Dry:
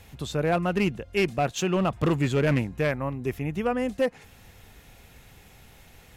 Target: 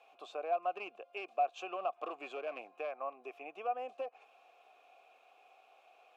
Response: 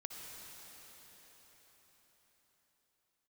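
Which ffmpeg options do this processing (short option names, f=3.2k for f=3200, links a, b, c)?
-filter_complex "[0:a]highpass=f=340:w=0.5412,highpass=f=340:w=1.3066,acompressor=threshold=-28dB:ratio=6,asplit=3[a][b][c];[a]bandpass=f=730:t=q:w=8,volume=0dB[d];[b]bandpass=f=1.09k:t=q:w=8,volume=-6dB[e];[c]bandpass=f=2.44k:t=q:w=8,volume=-9dB[f];[d][e][f]amix=inputs=3:normalize=0,volume=3.5dB"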